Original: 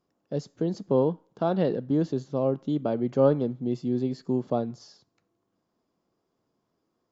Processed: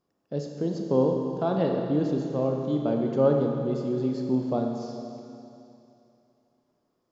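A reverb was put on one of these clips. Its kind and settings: Schroeder reverb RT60 2.8 s, combs from 27 ms, DRR 2 dB; trim -1.5 dB

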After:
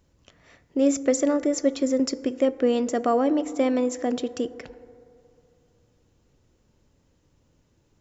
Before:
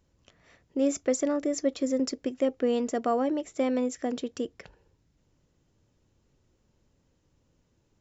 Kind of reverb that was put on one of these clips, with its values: FDN reverb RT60 2.7 s, low-frequency decay 0.75×, high-frequency decay 0.25×, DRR 15 dB; trim +4.5 dB

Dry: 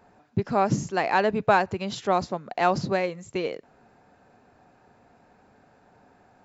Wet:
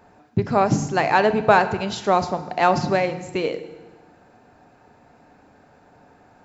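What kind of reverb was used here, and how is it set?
FDN reverb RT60 1.2 s, low-frequency decay 1.45×, high-frequency decay 0.95×, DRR 10 dB; trim +4.5 dB

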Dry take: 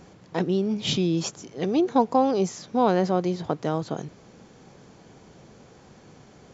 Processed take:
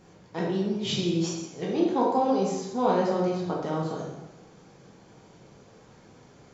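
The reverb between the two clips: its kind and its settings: plate-style reverb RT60 1 s, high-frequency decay 0.8×, DRR -4 dB; trim -7.5 dB

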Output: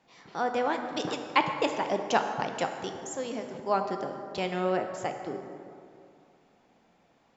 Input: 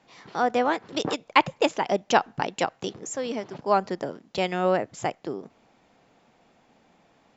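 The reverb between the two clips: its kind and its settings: plate-style reverb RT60 2.5 s, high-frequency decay 0.5×, pre-delay 0 ms, DRR 5 dB; trim -5.5 dB

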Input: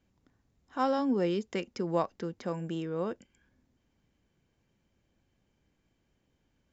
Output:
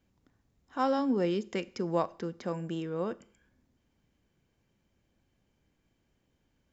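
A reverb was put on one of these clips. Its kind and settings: Schroeder reverb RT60 0.55 s, combs from 26 ms, DRR 19 dB

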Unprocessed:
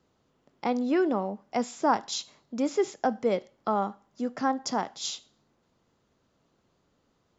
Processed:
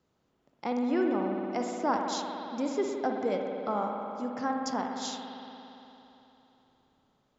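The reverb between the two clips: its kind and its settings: spring tank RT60 3.3 s, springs 57 ms, chirp 80 ms, DRR 1.5 dB; trim -5 dB

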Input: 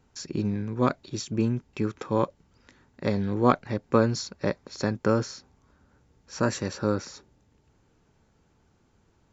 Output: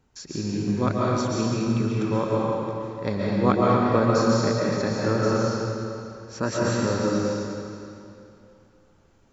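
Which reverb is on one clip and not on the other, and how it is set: algorithmic reverb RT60 2.7 s, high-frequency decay 0.9×, pre-delay 95 ms, DRR -5.5 dB; trim -2 dB

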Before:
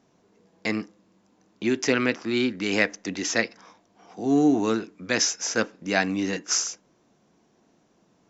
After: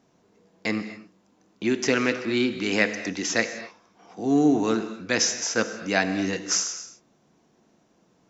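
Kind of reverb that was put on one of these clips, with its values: gated-style reverb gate 280 ms flat, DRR 9.5 dB

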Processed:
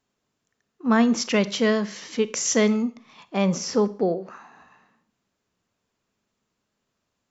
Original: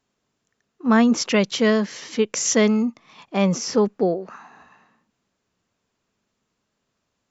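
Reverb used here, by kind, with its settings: Schroeder reverb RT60 0.44 s, combs from 31 ms, DRR 15 dB; trim -2.5 dB

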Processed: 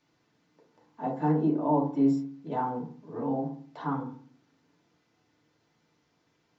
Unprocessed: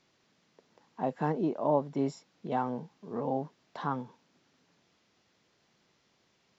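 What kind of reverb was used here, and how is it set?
FDN reverb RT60 0.46 s, low-frequency decay 1.45×, high-frequency decay 0.3×, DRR -3.5 dB; trim -6 dB

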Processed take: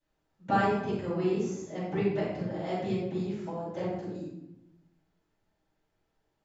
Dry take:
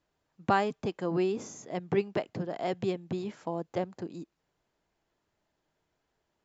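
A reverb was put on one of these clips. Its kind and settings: simulated room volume 270 m³, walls mixed, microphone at 7.3 m; trim -16.5 dB

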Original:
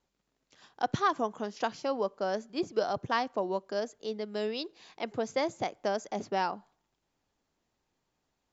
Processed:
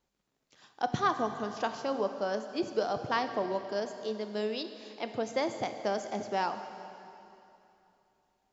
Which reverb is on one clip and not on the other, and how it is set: plate-style reverb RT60 2.9 s, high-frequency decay 0.95×, DRR 7.5 dB; trim -1 dB

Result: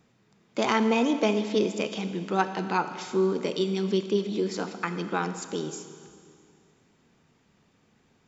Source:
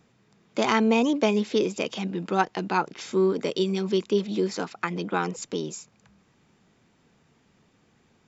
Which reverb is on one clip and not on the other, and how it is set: Schroeder reverb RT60 2.2 s, combs from 26 ms, DRR 9 dB; trim -2 dB

